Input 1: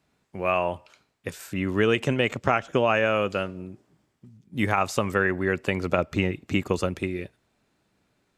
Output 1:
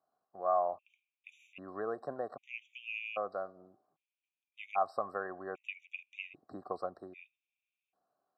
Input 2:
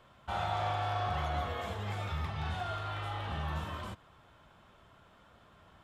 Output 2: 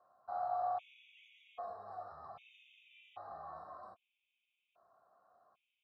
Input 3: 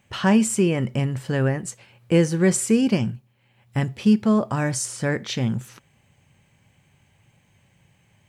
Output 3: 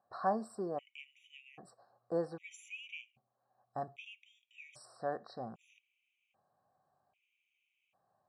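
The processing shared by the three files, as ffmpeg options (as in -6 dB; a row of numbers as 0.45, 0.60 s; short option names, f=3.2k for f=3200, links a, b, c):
-filter_complex "[0:a]asplit=3[a][b][c];[a]bandpass=f=730:t=q:w=8,volume=0dB[d];[b]bandpass=f=1.09k:t=q:w=8,volume=-6dB[e];[c]bandpass=f=2.44k:t=q:w=8,volume=-9dB[f];[d][e][f]amix=inputs=3:normalize=0,afftfilt=real='re*gt(sin(2*PI*0.63*pts/sr)*(1-2*mod(floor(b*sr/1024/1900),2)),0)':imag='im*gt(sin(2*PI*0.63*pts/sr)*(1-2*mod(floor(b*sr/1024/1900),2)),0)':win_size=1024:overlap=0.75,volume=1dB"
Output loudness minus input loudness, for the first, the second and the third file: -13.0, -7.0, -19.0 LU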